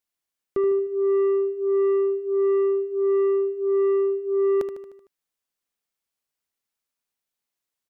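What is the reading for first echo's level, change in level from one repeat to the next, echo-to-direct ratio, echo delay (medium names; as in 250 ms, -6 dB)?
-10.0 dB, -5.0 dB, -8.5 dB, 76 ms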